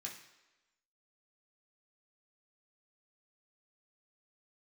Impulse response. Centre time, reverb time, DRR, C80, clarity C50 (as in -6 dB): 28 ms, 1.1 s, -2.0 dB, 10.0 dB, 7.5 dB